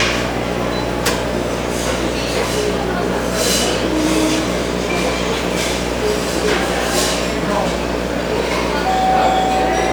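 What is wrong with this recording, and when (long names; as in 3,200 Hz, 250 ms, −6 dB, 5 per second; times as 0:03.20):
mains buzz 60 Hz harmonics 11 −23 dBFS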